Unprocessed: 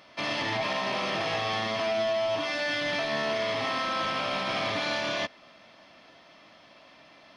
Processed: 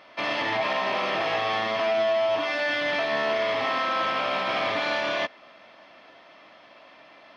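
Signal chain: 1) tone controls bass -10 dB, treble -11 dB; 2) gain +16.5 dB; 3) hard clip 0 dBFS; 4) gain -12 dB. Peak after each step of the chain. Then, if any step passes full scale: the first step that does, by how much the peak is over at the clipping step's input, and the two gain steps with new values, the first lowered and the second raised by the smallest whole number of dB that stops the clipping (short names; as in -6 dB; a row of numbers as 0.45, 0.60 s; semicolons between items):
-19.5, -3.0, -3.0, -15.0 dBFS; no overload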